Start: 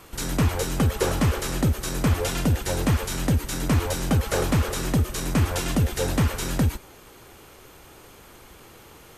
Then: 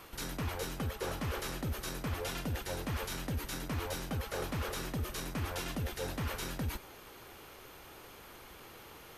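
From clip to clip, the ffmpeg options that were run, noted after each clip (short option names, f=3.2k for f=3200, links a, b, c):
-af "lowshelf=f=410:g=-5.5,areverse,acompressor=threshold=-32dB:ratio=6,areverse,equalizer=f=7.8k:t=o:w=0.67:g=-7,volume=-2dB"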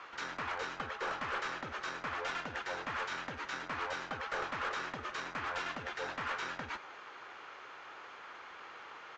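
-af "bandpass=f=1.4k:t=q:w=1.3:csg=0,aresample=16000,aeval=exprs='clip(val(0),-1,0.00944)':c=same,aresample=44100,volume=8dB"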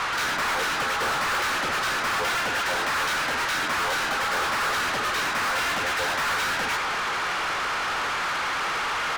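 -filter_complex "[0:a]asplit=2[a][b];[b]highpass=f=720:p=1,volume=35dB,asoftclip=type=tanh:threshold=-23.5dB[c];[a][c]amix=inputs=2:normalize=0,lowpass=f=7.5k:p=1,volume=-6dB,volume=4dB"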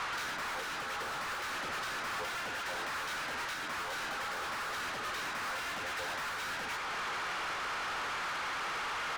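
-af "alimiter=level_in=2dB:limit=-24dB:level=0:latency=1:release=499,volume=-2dB,volume=-8dB"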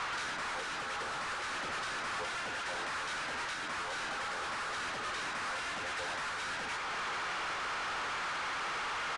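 -af "aresample=22050,aresample=44100"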